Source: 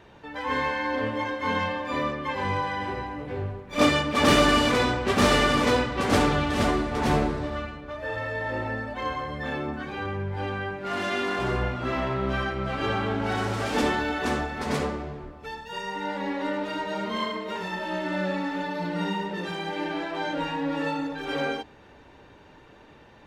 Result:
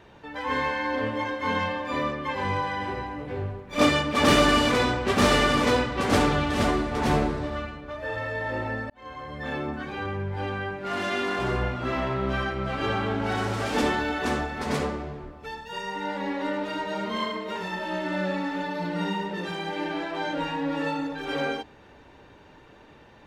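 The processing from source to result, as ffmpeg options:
-filter_complex "[0:a]asplit=2[s0][s1];[s0]atrim=end=8.9,asetpts=PTS-STARTPTS,afade=t=out:st=8.896:d=0.004:c=hsin[s2];[s1]atrim=start=8.9,asetpts=PTS-STARTPTS,afade=t=in:d=0.66[s3];[s2][s3]concat=n=2:v=0:a=1"

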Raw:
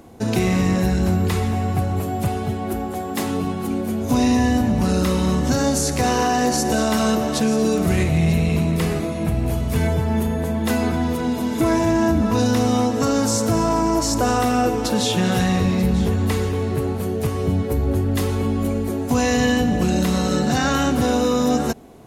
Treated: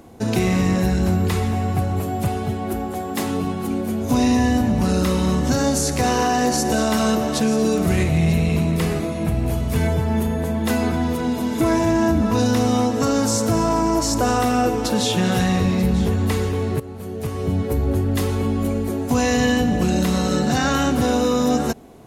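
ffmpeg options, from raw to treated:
-filter_complex "[0:a]asplit=2[s0][s1];[s0]atrim=end=16.8,asetpts=PTS-STARTPTS,afade=t=out:st=16.796:d=0.004:c=hsin:silence=0.188365[s2];[s1]atrim=start=16.8,asetpts=PTS-STARTPTS,afade=t=in:d=0.86:silence=0.188365[s3];[s2][s3]concat=n=2:v=0:a=1"

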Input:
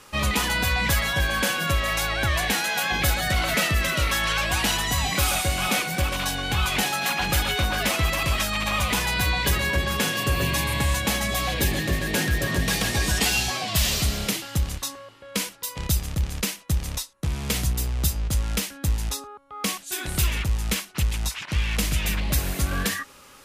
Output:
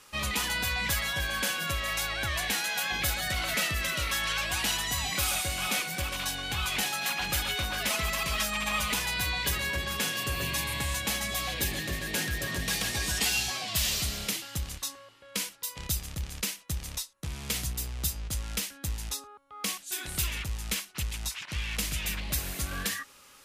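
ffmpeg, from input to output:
-filter_complex "[0:a]asettb=1/sr,asplit=3[s0][s1][s2];[s0]atrim=end=7.904[s3];[s1]atrim=start=7.9:end=8.94,asetpts=PTS-STARTPTS,afade=t=in:d=0.004:c=qsin,afade=t=out:st=1.036:d=0.004:c=qsin,aecho=1:1:4.7:0.65,atrim=end_sample=45864[s4];[s2]atrim=start=8.936[s5];[s3][s4]acrossfade=d=0.004:c1=hsin:c2=qsin[s6];[s6][s5]acrossfade=d=0.004:c1=qsin:c2=hsin,tiltshelf=f=1400:g=-3.5,volume=0.447"

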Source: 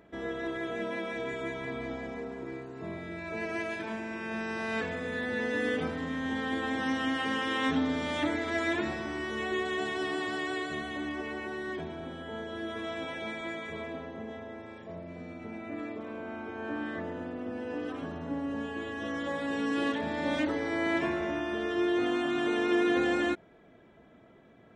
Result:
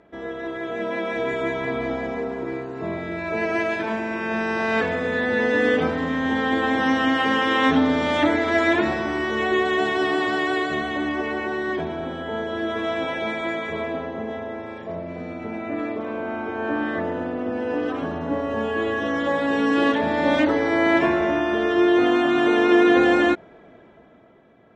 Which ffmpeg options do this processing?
-filter_complex "[0:a]asettb=1/sr,asplit=3[s0][s1][s2];[s0]atrim=end=18.294[s3];[s1]atrim=start=18.29:end=19,asetpts=PTS-STARTPTS,afade=t=in:d=0.004:c=qsin,afade=t=out:st=0.706:d=0.004:c=qsin,asplit=2[s4][s5];[s5]adelay=27,volume=0.631[s6];[s4][s6]amix=inputs=2:normalize=0,atrim=end_sample=31311[s7];[s2]atrim=start=18.996[s8];[s3][s7]acrossfade=d=0.004:c1=hsin:c2=qsin[s9];[s9][s8]acrossfade=d=0.004:c1=qsin:c2=hsin,lowpass=6700,equalizer=f=730:w=0.46:g=5,dynaudnorm=f=110:g=17:m=2.37"

